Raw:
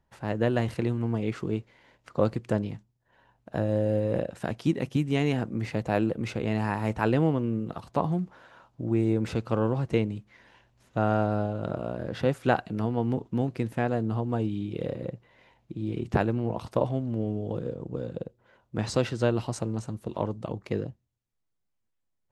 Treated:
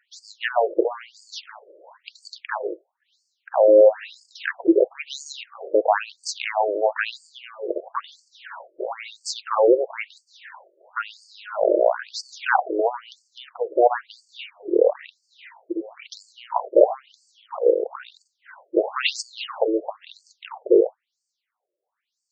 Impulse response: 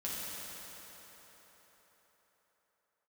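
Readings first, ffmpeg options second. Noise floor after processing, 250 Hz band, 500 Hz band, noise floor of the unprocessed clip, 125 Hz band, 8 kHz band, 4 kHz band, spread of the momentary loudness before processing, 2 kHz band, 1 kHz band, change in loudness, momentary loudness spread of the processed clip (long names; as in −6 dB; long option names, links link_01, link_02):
−82 dBFS, −2.0 dB, +9.5 dB, −77 dBFS, below −40 dB, can't be measured, +10.0 dB, 9 LU, +8.0 dB, +7.5 dB, +6.5 dB, 21 LU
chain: -af "alimiter=level_in=16.5dB:limit=-1dB:release=50:level=0:latency=1,afftfilt=real='re*between(b*sr/1024,440*pow(6300/440,0.5+0.5*sin(2*PI*1*pts/sr))/1.41,440*pow(6300/440,0.5+0.5*sin(2*PI*1*pts/sr))*1.41)':imag='im*between(b*sr/1024,440*pow(6300/440,0.5+0.5*sin(2*PI*1*pts/sr))/1.41,440*pow(6300/440,0.5+0.5*sin(2*PI*1*pts/sr))*1.41)':win_size=1024:overlap=0.75,volume=2.5dB"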